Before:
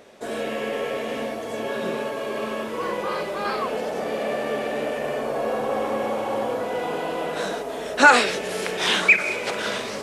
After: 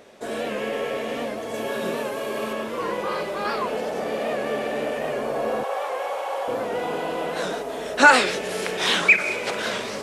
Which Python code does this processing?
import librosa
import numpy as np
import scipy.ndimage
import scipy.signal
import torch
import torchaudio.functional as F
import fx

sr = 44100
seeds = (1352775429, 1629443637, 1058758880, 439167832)

y = fx.high_shelf(x, sr, hz=8200.0, db=9.5, at=(1.54, 2.53))
y = fx.highpass(y, sr, hz=540.0, slope=24, at=(5.63, 6.48))
y = fx.record_warp(y, sr, rpm=78.0, depth_cents=100.0)